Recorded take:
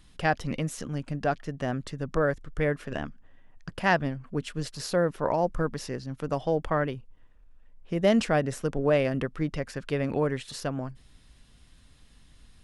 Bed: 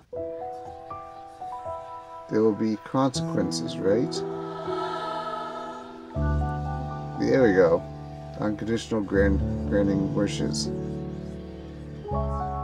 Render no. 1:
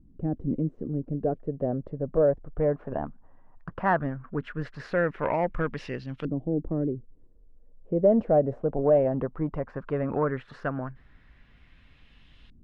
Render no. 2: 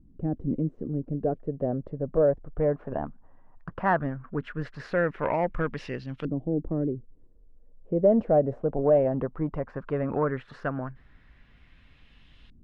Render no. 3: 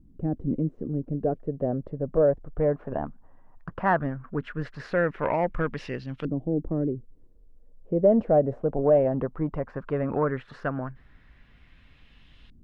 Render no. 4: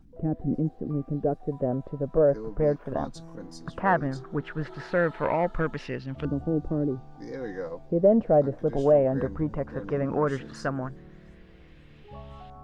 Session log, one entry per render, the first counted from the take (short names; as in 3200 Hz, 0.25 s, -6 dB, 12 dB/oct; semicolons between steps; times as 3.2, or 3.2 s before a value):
soft clip -17 dBFS, distortion -17 dB; LFO low-pass saw up 0.16 Hz 270–3100 Hz
nothing audible
gain +1 dB
add bed -16 dB